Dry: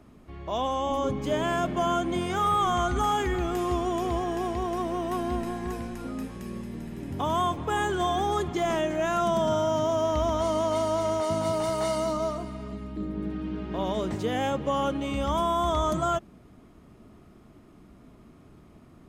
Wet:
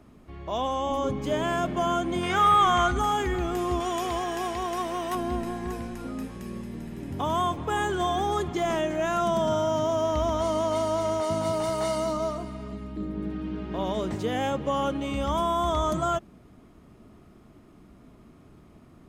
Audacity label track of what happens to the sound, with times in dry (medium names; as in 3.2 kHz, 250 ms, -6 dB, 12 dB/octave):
2.230000	2.910000	peaking EQ 2 kHz +8 dB 2.1 oct
3.800000	5.150000	tilt shelf lows -6.5 dB, about 640 Hz